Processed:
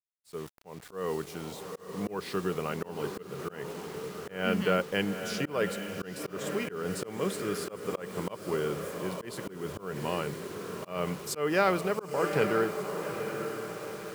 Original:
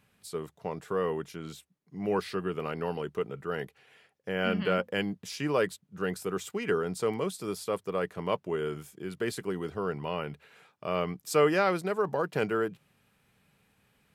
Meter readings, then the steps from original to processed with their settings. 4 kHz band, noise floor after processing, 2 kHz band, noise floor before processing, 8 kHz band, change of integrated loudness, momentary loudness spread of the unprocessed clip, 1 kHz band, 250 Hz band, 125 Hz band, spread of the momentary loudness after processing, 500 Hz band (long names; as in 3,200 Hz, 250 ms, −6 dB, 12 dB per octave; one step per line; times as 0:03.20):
+1.0 dB, −51 dBFS, 0.0 dB, −71 dBFS, +2.5 dB, −1.0 dB, 12 LU, −0.5 dB, 0.0 dB, 0.0 dB, 12 LU, −1.5 dB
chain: feedback delay with all-pass diffusion 859 ms, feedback 53%, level −8 dB
bit reduction 8 bits
volume swells 225 ms
level +1 dB